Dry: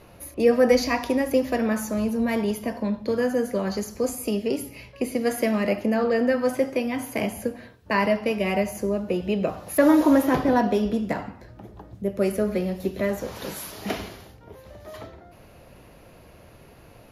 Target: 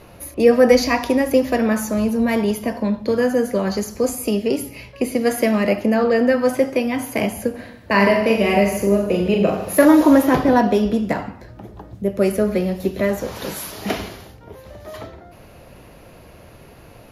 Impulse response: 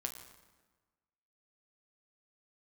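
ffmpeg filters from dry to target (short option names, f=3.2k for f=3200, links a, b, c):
-filter_complex "[0:a]asettb=1/sr,asplit=3[a][b][c];[a]atrim=end=7.504[d];[b]atrim=start=7.5:end=9.85,asetpts=PTS-STARTPTS,afade=t=in:d=0.004:c=qsin,afade=t=out:st=2.346:d=0.004:c=qsin,aecho=1:1:40|90|152.5|230.6|328.3:0.631|0.398|0.251|0.158|0.1,atrim=end_sample=103635[e];[c]atrim=start=9.846[f];[d][e]acrossfade=d=0.004:c1=hsin:c2=qsin[g];[g][f]acrossfade=d=0.004:c1=qsin:c2=hsin,volume=5.5dB"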